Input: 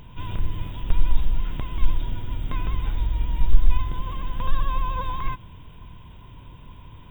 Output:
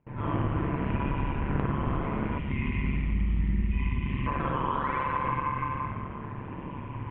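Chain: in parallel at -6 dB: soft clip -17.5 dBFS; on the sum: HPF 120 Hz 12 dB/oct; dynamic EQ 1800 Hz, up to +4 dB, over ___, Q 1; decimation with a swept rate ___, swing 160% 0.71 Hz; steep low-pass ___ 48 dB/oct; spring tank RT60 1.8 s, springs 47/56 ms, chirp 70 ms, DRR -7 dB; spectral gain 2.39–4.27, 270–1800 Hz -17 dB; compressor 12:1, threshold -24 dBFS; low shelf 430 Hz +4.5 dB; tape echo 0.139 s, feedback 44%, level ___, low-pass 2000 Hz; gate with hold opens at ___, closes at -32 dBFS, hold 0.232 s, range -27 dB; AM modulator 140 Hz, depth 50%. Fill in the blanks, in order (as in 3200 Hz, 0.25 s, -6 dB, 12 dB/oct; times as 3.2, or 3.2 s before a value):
-42 dBFS, 12×, 2700 Hz, -8.5 dB, -31 dBFS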